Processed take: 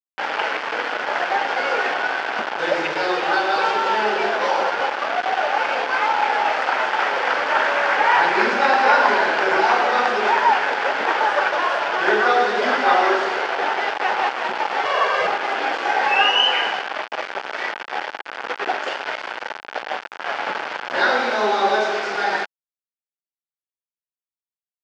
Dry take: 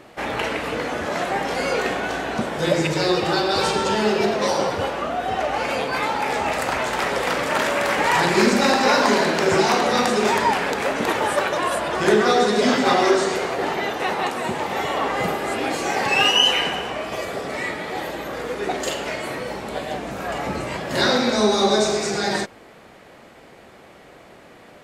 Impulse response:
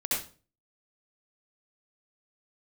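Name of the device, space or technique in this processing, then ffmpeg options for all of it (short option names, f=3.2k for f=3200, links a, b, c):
hand-held game console: -filter_complex "[0:a]acrusher=bits=3:mix=0:aa=0.000001,highpass=460,equalizer=f=840:t=q:w=4:g=6,equalizer=f=1.5k:t=q:w=4:g=7,equalizer=f=3.9k:t=q:w=4:g=-7,lowpass=f=4.2k:w=0.5412,lowpass=f=4.2k:w=1.3066,asettb=1/sr,asplit=3[a][b][c];[a]atrim=end=14.854[d];[b]atrim=start=14.85:end=15.27,asetpts=PTS-STARTPTS,afade=t=in:d=0.004:c=qsin,afade=t=out:st=0.416:d=0.004:c=qsin,aecho=1:1:1.8:0.8,atrim=end_sample=18522[e];[c]atrim=start=15.266[f];[d][e]acrossfade=d=0.004:c1=hsin:c2=qsin[g];[g][f]acrossfade=d=0.004:c1=qsin:c2=hsin"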